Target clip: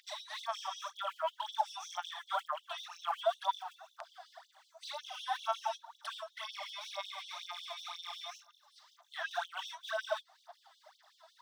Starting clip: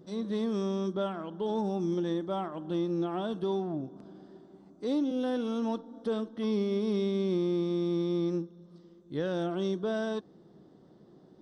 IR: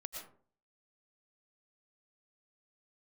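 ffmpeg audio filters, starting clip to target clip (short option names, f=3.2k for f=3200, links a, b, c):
-filter_complex "[0:a]acrossover=split=640|1500[a][b][c];[a]acompressor=threshold=-44dB:ratio=4[d];[b]acompressor=threshold=-42dB:ratio=4[e];[c]acompressor=threshold=-57dB:ratio=4[f];[d][e][f]amix=inputs=3:normalize=0,aphaser=in_gain=1:out_gain=1:delay=3.1:decay=0.76:speed=2:type=sinusoidal,afftfilt=real='re*gte(b*sr/1024,570*pow(3000/570,0.5+0.5*sin(2*PI*5.4*pts/sr)))':imag='im*gte(b*sr/1024,570*pow(3000/570,0.5+0.5*sin(2*PI*5.4*pts/sr)))':win_size=1024:overlap=0.75,volume=8.5dB"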